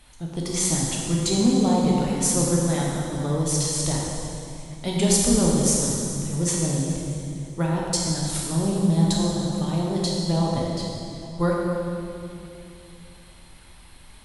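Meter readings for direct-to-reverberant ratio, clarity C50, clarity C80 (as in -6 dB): -4.0 dB, -1.0 dB, 0.0 dB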